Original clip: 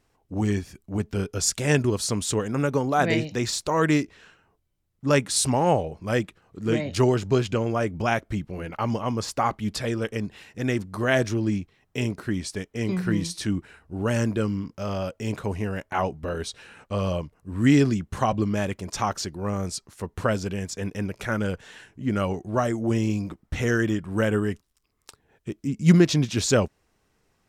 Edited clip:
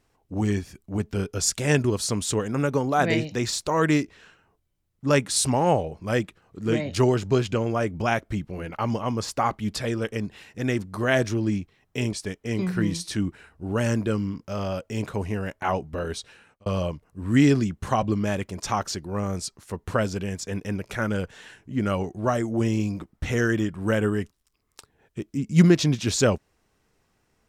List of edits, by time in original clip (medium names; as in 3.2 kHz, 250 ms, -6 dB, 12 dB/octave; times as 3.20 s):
12.13–12.43 s: delete
16.44–16.96 s: fade out